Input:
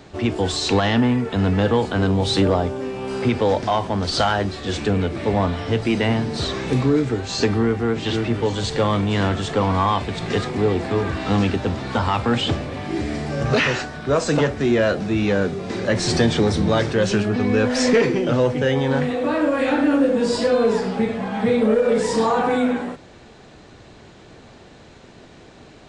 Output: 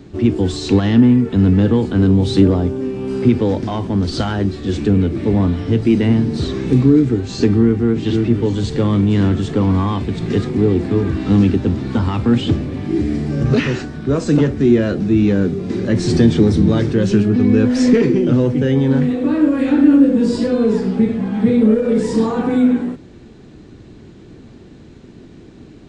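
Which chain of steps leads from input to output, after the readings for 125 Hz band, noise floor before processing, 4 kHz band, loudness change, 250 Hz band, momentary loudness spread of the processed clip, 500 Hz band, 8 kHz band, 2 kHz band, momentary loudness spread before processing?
+6.5 dB, -45 dBFS, -4.0 dB, +5.0 dB, +8.0 dB, 7 LU, +1.0 dB, no reading, -4.5 dB, 6 LU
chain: resonant low shelf 450 Hz +10 dB, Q 1.5; trim -4 dB

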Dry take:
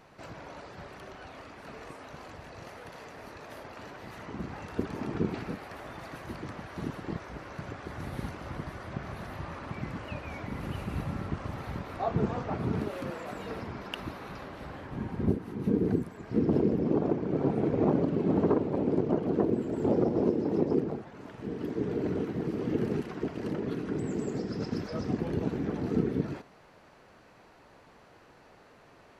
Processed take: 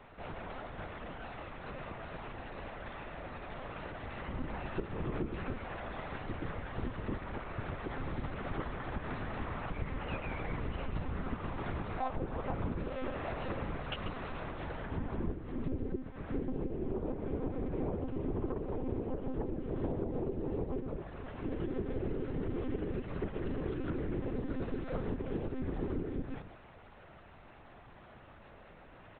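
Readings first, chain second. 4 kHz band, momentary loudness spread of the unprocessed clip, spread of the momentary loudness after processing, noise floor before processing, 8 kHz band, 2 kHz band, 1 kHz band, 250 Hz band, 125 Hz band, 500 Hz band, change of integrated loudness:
-3.5 dB, 18 LU, 8 LU, -57 dBFS, no reading, -1.0 dB, -3.0 dB, -8.5 dB, -5.0 dB, -7.5 dB, -7.5 dB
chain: compression 16:1, threshold -33 dBFS, peak gain reduction 14 dB; on a send: delay 136 ms -11.5 dB; on the sum: monotone LPC vocoder at 8 kHz 260 Hz; trim +1.5 dB

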